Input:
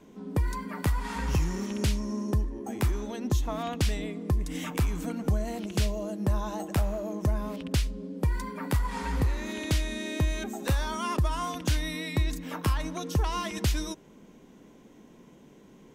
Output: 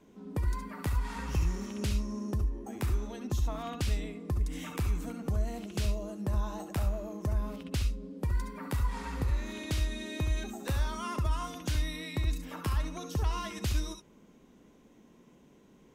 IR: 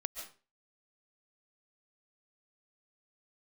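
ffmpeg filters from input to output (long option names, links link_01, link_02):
-filter_complex "[1:a]atrim=start_sample=2205,afade=type=out:start_time=0.2:duration=0.01,atrim=end_sample=9261,asetrate=88200,aresample=44100[link_01];[0:a][link_01]afir=irnorm=-1:irlink=0,volume=1.5dB"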